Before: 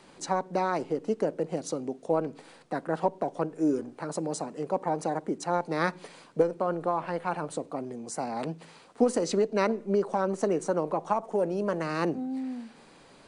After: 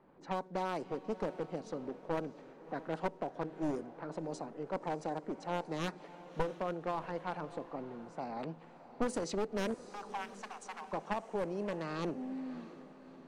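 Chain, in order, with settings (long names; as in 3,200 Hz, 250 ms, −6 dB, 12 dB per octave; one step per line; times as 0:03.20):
wavefolder on the positive side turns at −24.5 dBFS
low-pass that shuts in the quiet parts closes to 1,100 Hz, open at −23 dBFS
0:09.74–0:10.93: Chebyshev high-pass filter 740 Hz, order 6
on a send: feedback delay with all-pass diffusion 640 ms, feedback 49%, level −15 dB
on the sum: level −8 dB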